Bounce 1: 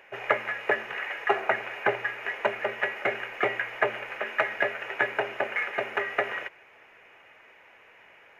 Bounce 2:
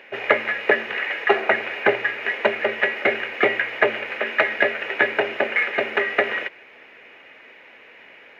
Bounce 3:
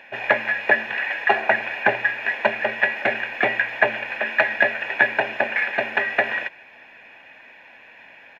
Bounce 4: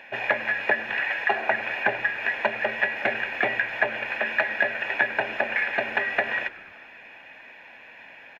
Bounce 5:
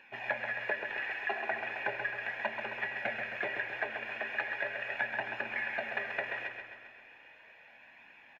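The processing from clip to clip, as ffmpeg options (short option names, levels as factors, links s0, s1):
-af "equalizer=f=250:t=o:w=1:g=12,equalizer=f=500:t=o:w=1:g=6,equalizer=f=2000:t=o:w=1:g=6,equalizer=f=4000:t=o:w=1:g=12,equalizer=f=8000:t=o:w=1:g=-4"
-af "aecho=1:1:1.2:0.63,volume=0.891"
-filter_complex "[0:a]acompressor=threshold=0.0708:ratio=2,asplit=6[s0][s1][s2][s3][s4][s5];[s1]adelay=98,afreqshift=-100,volume=0.1[s6];[s2]adelay=196,afreqshift=-200,volume=0.061[s7];[s3]adelay=294,afreqshift=-300,volume=0.0372[s8];[s4]adelay=392,afreqshift=-400,volume=0.0226[s9];[s5]adelay=490,afreqshift=-500,volume=0.0138[s10];[s0][s6][s7][s8][s9][s10]amix=inputs=6:normalize=0"
-af "flanger=delay=0.7:depth=2.3:regen=-40:speed=0.37:shape=triangular,aecho=1:1:133|266|399|532|665|798|931|1064:0.473|0.274|0.159|0.0923|0.0535|0.0311|0.018|0.0104,volume=0.422"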